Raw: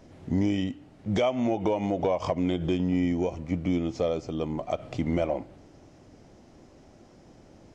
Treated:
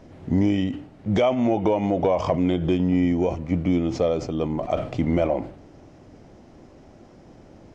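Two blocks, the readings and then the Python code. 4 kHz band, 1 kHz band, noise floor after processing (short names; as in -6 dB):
+2.5 dB, +5.0 dB, -49 dBFS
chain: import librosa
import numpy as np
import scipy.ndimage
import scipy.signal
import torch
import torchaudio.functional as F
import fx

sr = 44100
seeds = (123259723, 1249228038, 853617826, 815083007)

y = fx.high_shelf(x, sr, hz=4300.0, db=-8.5)
y = fx.sustainer(y, sr, db_per_s=110.0)
y = y * librosa.db_to_amplitude(5.0)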